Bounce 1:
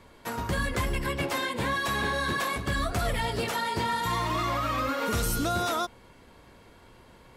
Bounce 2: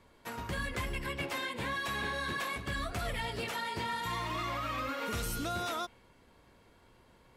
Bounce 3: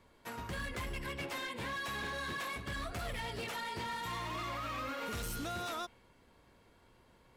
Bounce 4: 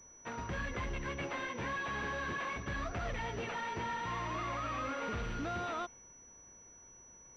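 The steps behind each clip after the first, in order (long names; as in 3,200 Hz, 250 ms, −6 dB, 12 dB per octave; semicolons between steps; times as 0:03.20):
dynamic equaliser 2,500 Hz, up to +5 dB, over −48 dBFS, Q 1.2; level −8.5 dB
hard clipping −33 dBFS, distortion −14 dB; level −2.5 dB
in parallel at −11 dB: bit reduction 8 bits; on the sum: switching amplifier with a slow clock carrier 5,900 Hz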